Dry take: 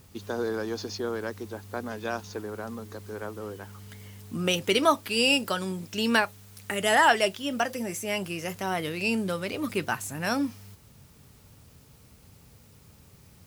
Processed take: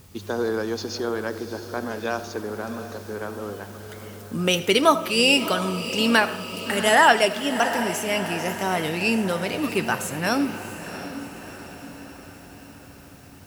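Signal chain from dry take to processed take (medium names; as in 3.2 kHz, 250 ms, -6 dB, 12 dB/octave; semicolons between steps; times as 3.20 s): echo that smears into a reverb 693 ms, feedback 56%, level -11 dB; on a send at -14.5 dB: reverberation RT60 0.70 s, pre-delay 30 ms; on the sum: trim +4.5 dB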